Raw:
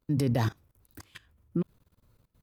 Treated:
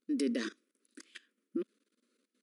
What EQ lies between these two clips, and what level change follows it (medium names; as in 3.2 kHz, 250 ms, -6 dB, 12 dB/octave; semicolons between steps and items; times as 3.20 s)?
brick-wall FIR band-pass 210–11000 Hz; Butterworth band-stop 820 Hz, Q 0.9; -1.5 dB